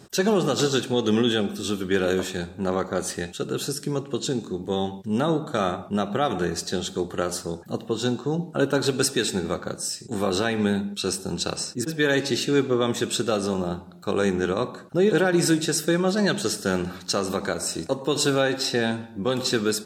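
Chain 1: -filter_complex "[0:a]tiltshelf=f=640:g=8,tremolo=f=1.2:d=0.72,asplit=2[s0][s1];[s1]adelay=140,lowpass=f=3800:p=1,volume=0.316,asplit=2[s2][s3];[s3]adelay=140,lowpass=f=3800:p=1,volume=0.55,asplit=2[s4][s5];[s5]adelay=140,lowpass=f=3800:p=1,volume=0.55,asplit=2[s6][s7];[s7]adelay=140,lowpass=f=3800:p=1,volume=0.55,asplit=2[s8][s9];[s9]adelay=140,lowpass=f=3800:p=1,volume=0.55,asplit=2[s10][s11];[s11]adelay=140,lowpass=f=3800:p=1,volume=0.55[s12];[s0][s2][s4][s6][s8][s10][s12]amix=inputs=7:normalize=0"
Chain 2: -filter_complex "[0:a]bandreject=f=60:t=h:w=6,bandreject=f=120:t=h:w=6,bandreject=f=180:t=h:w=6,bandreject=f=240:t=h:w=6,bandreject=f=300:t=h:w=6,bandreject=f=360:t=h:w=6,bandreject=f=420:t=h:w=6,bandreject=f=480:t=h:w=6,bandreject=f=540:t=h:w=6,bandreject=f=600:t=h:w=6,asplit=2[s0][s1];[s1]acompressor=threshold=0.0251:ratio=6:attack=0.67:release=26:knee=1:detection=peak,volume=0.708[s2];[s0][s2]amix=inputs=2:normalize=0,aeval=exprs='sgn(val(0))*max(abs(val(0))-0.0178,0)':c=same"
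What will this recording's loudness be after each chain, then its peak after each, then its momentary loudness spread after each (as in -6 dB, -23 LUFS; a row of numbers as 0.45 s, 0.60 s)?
-24.5 LUFS, -25.5 LUFS; -6.0 dBFS, -8.5 dBFS; 10 LU, 7 LU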